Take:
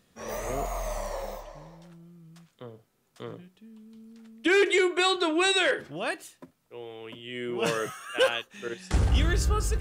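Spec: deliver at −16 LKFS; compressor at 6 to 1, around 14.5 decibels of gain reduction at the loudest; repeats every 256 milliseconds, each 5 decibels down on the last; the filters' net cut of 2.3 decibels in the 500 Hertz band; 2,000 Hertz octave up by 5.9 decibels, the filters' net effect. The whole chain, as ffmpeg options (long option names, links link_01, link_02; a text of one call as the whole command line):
ffmpeg -i in.wav -af "equalizer=frequency=500:width_type=o:gain=-3.5,equalizer=frequency=2000:width_type=o:gain=8,acompressor=threshold=-31dB:ratio=6,aecho=1:1:256|512|768|1024|1280|1536|1792:0.562|0.315|0.176|0.0988|0.0553|0.031|0.0173,volume=18dB" out.wav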